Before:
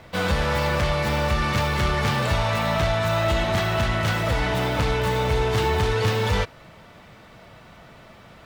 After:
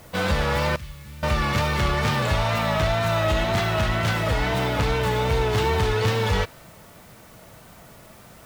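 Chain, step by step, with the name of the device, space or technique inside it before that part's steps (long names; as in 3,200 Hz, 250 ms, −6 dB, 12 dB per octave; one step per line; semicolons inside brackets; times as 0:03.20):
0:00.76–0:01.23: guitar amp tone stack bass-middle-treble 6-0-2
plain cassette with noise reduction switched in (one half of a high-frequency compander decoder only; tape wow and flutter; white noise bed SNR 30 dB)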